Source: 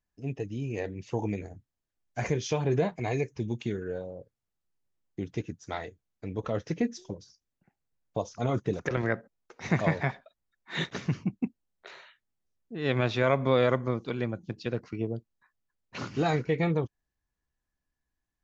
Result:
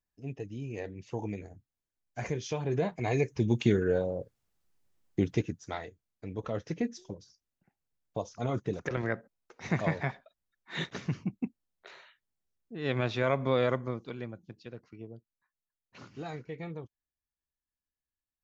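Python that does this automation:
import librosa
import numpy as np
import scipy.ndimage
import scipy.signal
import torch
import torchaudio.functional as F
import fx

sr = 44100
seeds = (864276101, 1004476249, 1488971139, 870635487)

y = fx.gain(x, sr, db=fx.line((2.66, -5.0), (3.66, 7.5), (5.2, 7.5), (5.82, -3.5), (13.69, -3.5), (14.74, -13.5)))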